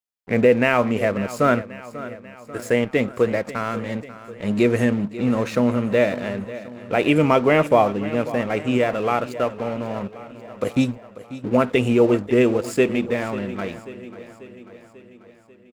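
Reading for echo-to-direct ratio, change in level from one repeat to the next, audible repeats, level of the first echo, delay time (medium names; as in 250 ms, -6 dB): -13.5 dB, -4.5 dB, 5, -15.5 dB, 541 ms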